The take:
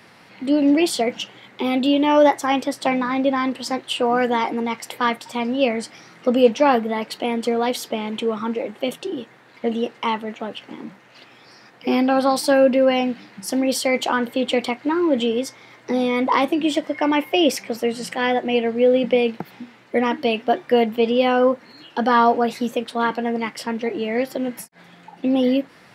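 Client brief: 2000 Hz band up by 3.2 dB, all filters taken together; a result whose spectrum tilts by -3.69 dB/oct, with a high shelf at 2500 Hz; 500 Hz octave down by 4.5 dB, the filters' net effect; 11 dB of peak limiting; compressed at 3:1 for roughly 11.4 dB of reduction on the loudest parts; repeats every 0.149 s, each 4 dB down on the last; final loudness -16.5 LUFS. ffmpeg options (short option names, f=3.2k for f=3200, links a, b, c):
-af "equalizer=f=500:t=o:g=-5,equalizer=f=2k:t=o:g=6.5,highshelf=f=2.5k:g=-5,acompressor=threshold=-28dB:ratio=3,alimiter=limit=-24dB:level=0:latency=1,aecho=1:1:149|298|447|596|745|894|1043|1192|1341:0.631|0.398|0.25|0.158|0.0994|0.0626|0.0394|0.0249|0.0157,volume=15.5dB"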